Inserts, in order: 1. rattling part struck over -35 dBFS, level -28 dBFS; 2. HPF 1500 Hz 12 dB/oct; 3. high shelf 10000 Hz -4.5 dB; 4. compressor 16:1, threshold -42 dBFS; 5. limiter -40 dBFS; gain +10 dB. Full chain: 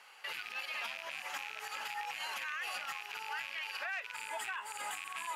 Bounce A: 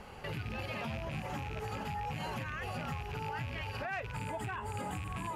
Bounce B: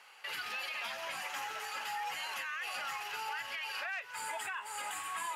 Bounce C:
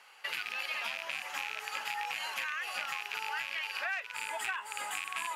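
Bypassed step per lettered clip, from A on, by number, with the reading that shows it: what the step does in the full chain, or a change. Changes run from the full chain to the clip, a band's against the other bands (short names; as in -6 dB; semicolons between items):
2, 500 Hz band +14.5 dB; 1, 2 kHz band -2.0 dB; 5, mean gain reduction 3.5 dB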